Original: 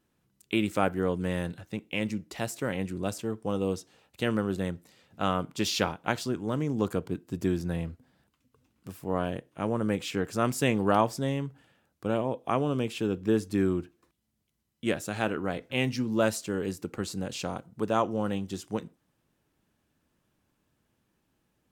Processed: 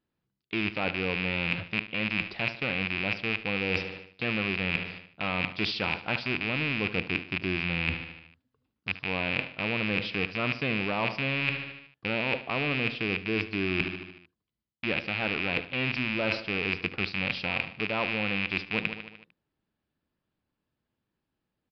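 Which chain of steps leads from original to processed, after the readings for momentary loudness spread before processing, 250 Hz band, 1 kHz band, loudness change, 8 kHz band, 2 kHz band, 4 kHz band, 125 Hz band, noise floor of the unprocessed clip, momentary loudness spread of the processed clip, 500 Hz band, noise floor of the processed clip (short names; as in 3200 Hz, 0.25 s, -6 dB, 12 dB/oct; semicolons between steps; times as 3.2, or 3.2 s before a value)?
9 LU, -3.5 dB, -4.0 dB, +1.0 dB, under -20 dB, +10.0 dB, +5.5 dB, -2.0 dB, -76 dBFS, 6 LU, -4.5 dB, -84 dBFS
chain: rattling part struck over -38 dBFS, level -13 dBFS; in parallel at -5 dB: soft clip -20 dBFS, distortion -12 dB; on the sum: gate -51 dBFS, range -18 dB; feedback echo 75 ms, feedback 60%, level -16 dB; downsampling 11025 Hz; reverse; compressor 12:1, threshold -30 dBFS, peak gain reduction 16 dB; reverse; gain +5 dB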